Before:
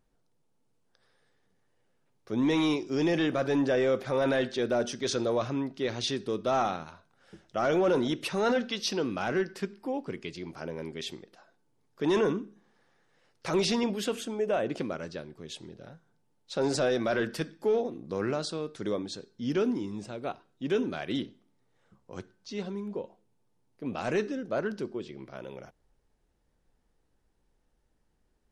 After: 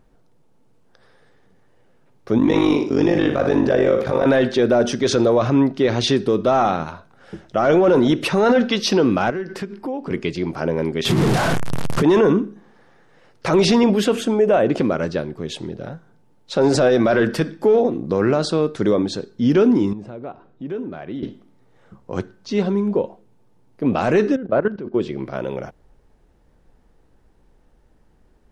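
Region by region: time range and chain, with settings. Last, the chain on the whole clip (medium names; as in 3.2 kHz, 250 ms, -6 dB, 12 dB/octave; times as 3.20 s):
2.38–4.26 s: AM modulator 49 Hz, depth 85% + flutter echo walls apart 9.4 m, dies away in 0.38 s
9.30–10.11 s: compression 5:1, threshold -40 dBFS + tape noise reduction on one side only decoder only
11.05–12.03 s: one-bit delta coder 64 kbps, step -36 dBFS + peaking EQ 140 Hz +14.5 dB 0.93 oct + level flattener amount 50%
19.93–21.23 s: low-pass 1.5 kHz 6 dB/octave + compression 2:1, threshold -54 dBFS
24.36–24.94 s: Gaussian low-pass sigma 2.4 samples + level held to a coarse grid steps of 15 dB
whole clip: treble shelf 2.5 kHz -9.5 dB; loudness maximiser +23.5 dB; trim -7 dB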